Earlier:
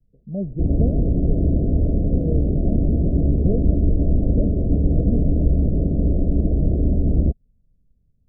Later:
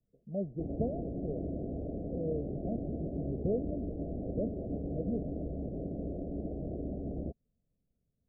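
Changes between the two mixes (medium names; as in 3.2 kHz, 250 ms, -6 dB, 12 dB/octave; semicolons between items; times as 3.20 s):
background -6.0 dB; master: add tilt EQ +4.5 dB/octave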